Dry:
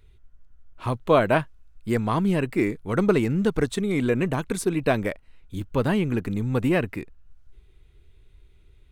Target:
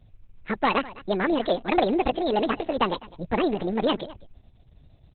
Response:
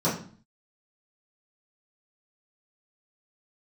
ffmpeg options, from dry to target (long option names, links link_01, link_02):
-filter_complex "[0:a]bandreject=frequency=560:width=18,aresample=8000,aeval=exprs='clip(val(0),-1,0.15)':channel_layout=same,aresample=44100,asplit=2[link_01][link_02];[link_02]adelay=355.7,volume=-19dB,highshelf=frequency=4000:gain=-8[link_03];[link_01][link_03]amix=inputs=2:normalize=0,asetrate=76440,aresample=44100" -ar 48000 -c:a libopus -b:a 6k